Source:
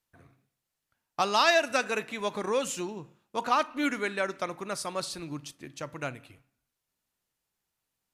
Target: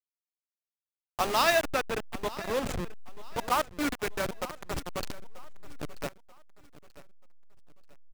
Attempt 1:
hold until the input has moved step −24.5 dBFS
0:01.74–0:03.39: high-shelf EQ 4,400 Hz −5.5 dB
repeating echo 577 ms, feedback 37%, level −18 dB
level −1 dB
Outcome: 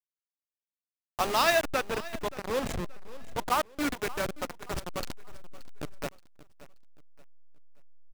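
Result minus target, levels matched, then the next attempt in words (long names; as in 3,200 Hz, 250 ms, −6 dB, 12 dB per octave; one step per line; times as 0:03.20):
echo 358 ms early
hold until the input has moved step −24.5 dBFS
0:01.74–0:03.39: high-shelf EQ 4,400 Hz −5.5 dB
repeating echo 935 ms, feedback 37%, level −18 dB
level −1 dB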